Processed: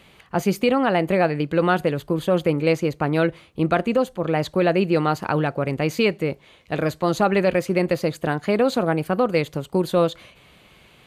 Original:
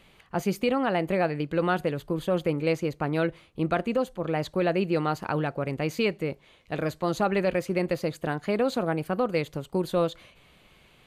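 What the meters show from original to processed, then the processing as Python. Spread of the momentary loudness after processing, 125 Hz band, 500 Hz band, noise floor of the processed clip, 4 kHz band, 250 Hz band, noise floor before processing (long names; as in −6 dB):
5 LU, +6.0 dB, +6.0 dB, −53 dBFS, +6.0 dB, +6.0 dB, −59 dBFS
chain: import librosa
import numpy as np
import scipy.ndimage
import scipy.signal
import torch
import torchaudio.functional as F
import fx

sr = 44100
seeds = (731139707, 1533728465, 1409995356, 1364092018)

y = scipy.signal.sosfilt(scipy.signal.butter(2, 46.0, 'highpass', fs=sr, output='sos'), x)
y = F.gain(torch.from_numpy(y), 6.0).numpy()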